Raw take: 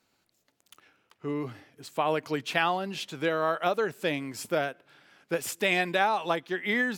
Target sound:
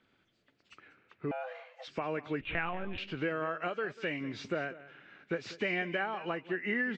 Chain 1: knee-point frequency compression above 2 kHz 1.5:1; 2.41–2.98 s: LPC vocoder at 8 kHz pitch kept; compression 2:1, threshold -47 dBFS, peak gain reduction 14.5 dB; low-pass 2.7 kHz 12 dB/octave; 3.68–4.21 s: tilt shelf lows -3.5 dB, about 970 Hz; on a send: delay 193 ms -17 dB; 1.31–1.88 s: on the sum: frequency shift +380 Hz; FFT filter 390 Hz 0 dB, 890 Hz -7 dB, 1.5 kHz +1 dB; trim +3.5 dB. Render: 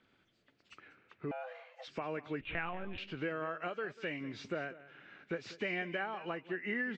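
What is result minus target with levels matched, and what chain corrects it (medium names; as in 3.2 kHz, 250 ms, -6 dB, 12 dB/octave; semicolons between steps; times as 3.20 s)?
compression: peak gain reduction +4 dB
knee-point frequency compression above 2 kHz 1.5:1; 2.41–2.98 s: LPC vocoder at 8 kHz pitch kept; compression 2:1, threshold -39 dBFS, peak gain reduction 10.5 dB; low-pass 2.7 kHz 12 dB/octave; 3.68–4.21 s: tilt shelf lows -3.5 dB, about 970 Hz; on a send: delay 193 ms -17 dB; 1.31–1.88 s: on the sum: frequency shift +380 Hz; FFT filter 390 Hz 0 dB, 890 Hz -7 dB, 1.5 kHz +1 dB; trim +3.5 dB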